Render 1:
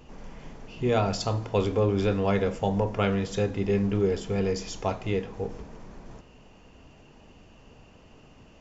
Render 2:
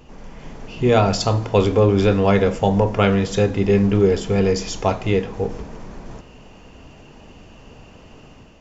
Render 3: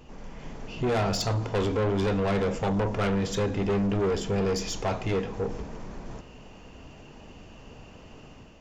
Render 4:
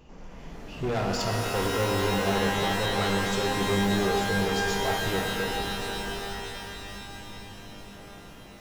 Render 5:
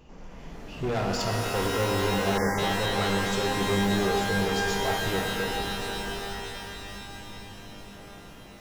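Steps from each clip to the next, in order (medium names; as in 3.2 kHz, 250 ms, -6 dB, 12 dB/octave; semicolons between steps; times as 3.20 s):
level rider gain up to 5 dB; trim +4 dB
saturation -18.5 dBFS, distortion -8 dB; trim -3.5 dB
pitch-shifted reverb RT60 3.6 s, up +12 st, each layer -2 dB, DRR 1.5 dB; trim -3.5 dB
spectral selection erased 2.38–2.58 s, 2.2–4.6 kHz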